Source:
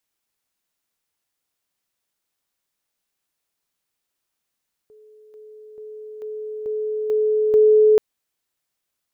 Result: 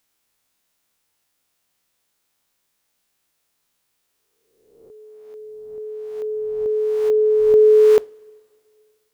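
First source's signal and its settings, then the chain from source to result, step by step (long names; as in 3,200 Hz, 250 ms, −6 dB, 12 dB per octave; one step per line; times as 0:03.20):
level staircase 429 Hz −46 dBFS, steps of 6 dB, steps 7, 0.44 s 0.00 s
peak hold with a rise ahead of every peak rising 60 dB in 1.04 s
in parallel at −1 dB: downward compressor, threshold −25 dBFS
on the sum: coupled-rooms reverb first 0.28 s, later 2.4 s, from −18 dB, DRR 19 dB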